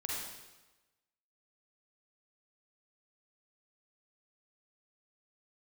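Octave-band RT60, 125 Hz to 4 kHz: 1.1, 1.1, 1.1, 1.1, 1.1, 1.0 seconds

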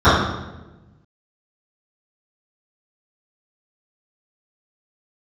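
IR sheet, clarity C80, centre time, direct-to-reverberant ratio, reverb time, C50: 3.5 dB, 70 ms, −19.0 dB, 1.1 s, 0.0 dB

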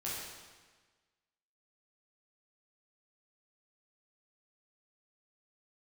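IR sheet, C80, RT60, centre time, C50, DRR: 1.5 dB, 1.4 s, 96 ms, −1.0 dB, −7.5 dB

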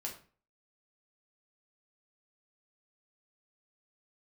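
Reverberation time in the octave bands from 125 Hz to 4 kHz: 0.45, 0.45, 0.40, 0.40, 0.35, 0.30 seconds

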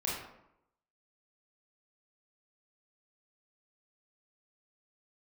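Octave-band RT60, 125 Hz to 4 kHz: 0.80, 0.85, 0.80, 0.80, 0.65, 0.45 seconds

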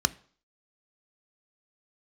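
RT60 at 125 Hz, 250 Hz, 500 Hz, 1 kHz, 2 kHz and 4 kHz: 0.40, 0.50, 0.50, 0.50, 0.45, 0.50 seconds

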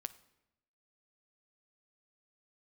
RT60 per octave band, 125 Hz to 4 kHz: 1.1, 1.0, 0.95, 0.85, 0.85, 0.70 seconds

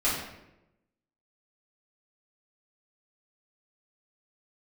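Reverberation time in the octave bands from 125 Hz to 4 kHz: 1.1, 1.1, 1.0, 0.80, 0.80, 0.60 seconds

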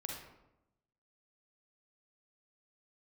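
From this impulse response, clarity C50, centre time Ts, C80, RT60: 1.0 dB, 51 ms, 5.5 dB, 0.90 s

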